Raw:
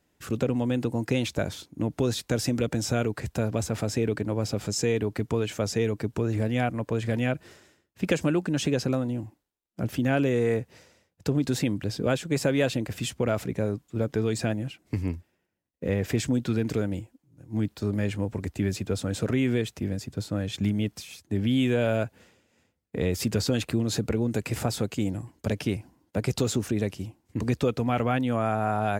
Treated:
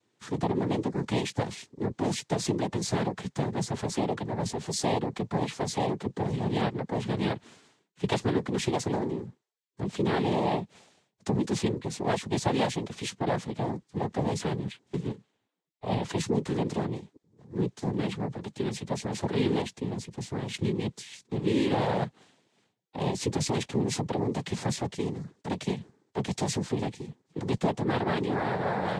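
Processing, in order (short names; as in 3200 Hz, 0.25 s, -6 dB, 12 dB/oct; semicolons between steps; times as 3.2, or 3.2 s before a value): noise vocoder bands 6; vibrato 2.4 Hz 5.1 cents; gain -2 dB; Vorbis 48 kbps 48000 Hz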